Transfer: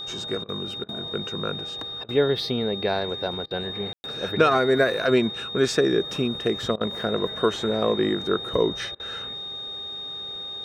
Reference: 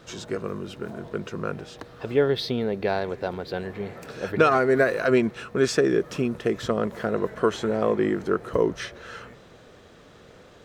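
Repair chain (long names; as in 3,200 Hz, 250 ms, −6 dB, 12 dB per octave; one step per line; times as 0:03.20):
hum removal 401.7 Hz, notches 3
notch filter 3,700 Hz, Q 30
ambience match 0:03.93–0:04.04
repair the gap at 0:00.44/0:00.84/0:02.04/0:03.46/0:06.76/0:08.95, 46 ms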